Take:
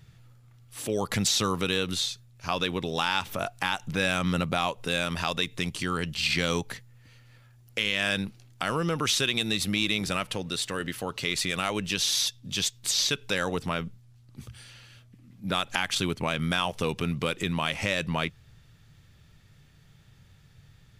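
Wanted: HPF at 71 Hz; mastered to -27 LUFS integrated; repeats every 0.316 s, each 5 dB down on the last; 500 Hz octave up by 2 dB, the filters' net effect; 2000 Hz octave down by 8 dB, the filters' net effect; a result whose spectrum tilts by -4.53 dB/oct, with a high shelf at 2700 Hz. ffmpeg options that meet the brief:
-af "highpass=71,equalizer=f=500:t=o:g=3,equalizer=f=2k:t=o:g=-8,highshelf=f=2.7k:g=-6.5,aecho=1:1:316|632|948|1264|1580|1896|2212:0.562|0.315|0.176|0.0988|0.0553|0.031|0.0173,volume=2.5dB"

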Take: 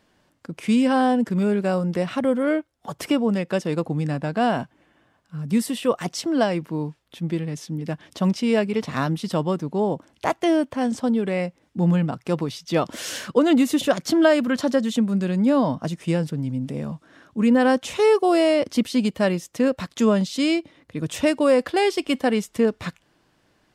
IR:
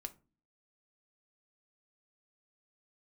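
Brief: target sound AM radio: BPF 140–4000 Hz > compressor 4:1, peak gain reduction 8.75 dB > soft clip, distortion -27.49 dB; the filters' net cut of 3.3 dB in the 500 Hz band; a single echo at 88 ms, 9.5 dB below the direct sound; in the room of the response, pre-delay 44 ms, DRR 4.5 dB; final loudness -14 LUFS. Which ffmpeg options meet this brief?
-filter_complex "[0:a]equalizer=f=500:t=o:g=-4,aecho=1:1:88:0.335,asplit=2[a][b];[1:a]atrim=start_sample=2205,adelay=44[c];[b][c]afir=irnorm=-1:irlink=0,volume=-1dB[d];[a][d]amix=inputs=2:normalize=0,highpass=140,lowpass=4k,acompressor=threshold=-21dB:ratio=4,asoftclip=threshold=-12.5dB,volume=13dB"

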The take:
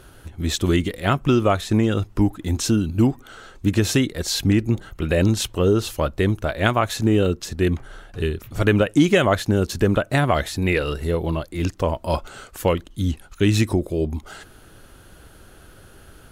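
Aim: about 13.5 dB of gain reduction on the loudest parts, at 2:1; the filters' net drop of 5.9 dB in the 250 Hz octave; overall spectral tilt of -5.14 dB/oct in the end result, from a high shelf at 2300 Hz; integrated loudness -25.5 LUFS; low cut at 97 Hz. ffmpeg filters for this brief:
-af "highpass=97,equalizer=f=250:t=o:g=-8,highshelf=f=2.3k:g=-3.5,acompressor=threshold=-41dB:ratio=2,volume=11.5dB"

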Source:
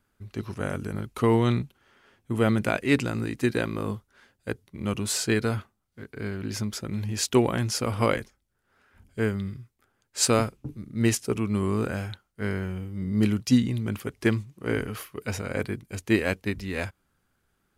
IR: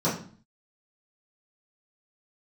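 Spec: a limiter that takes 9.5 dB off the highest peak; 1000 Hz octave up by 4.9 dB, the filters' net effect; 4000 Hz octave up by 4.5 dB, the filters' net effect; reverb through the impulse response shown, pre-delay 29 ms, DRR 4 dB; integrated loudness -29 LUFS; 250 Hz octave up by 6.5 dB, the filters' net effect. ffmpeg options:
-filter_complex "[0:a]equalizer=f=250:t=o:g=7.5,equalizer=f=1k:t=o:g=5.5,equalizer=f=4k:t=o:g=5.5,alimiter=limit=-11.5dB:level=0:latency=1,asplit=2[a][b];[1:a]atrim=start_sample=2205,adelay=29[c];[b][c]afir=irnorm=-1:irlink=0,volume=-16.5dB[d];[a][d]amix=inputs=2:normalize=0,volume=-8dB"

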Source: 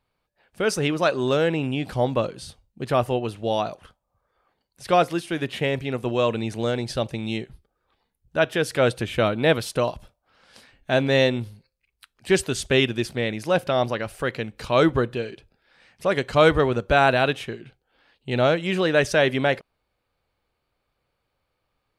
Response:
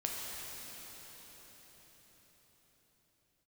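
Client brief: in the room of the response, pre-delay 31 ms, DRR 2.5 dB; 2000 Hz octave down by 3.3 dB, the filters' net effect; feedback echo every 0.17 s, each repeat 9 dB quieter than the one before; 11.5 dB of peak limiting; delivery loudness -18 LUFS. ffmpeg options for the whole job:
-filter_complex "[0:a]equalizer=f=2k:t=o:g=-4.5,alimiter=limit=-16dB:level=0:latency=1,aecho=1:1:170|340|510|680:0.355|0.124|0.0435|0.0152,asplit=2[a][b];[1:a]atrim=start_sample=2205,adelay=31[c];[b][c]afir=irnorm=-1:irlink=0,volume=-6dB[d];[a][d]amix=inputs=2:normalize=0,volume=8dB"

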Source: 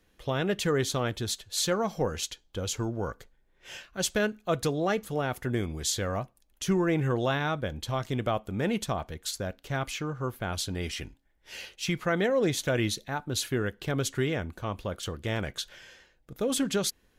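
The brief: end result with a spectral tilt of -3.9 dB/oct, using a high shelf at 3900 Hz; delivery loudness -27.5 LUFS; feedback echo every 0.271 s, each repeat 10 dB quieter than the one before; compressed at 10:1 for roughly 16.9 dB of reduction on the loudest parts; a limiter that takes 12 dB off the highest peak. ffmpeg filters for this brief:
-af "highshelf=f=3.9k:g=8,acompressor=threshold=-38dB:ratio=10,alimiter=level_in=10.5dB:limit=-24dB:level=0:latency=1,volume=-10.5dB,aecho=1:1:271|542|813|1084:0.316|0.101|0.0324|0.0104,volume=17dB"

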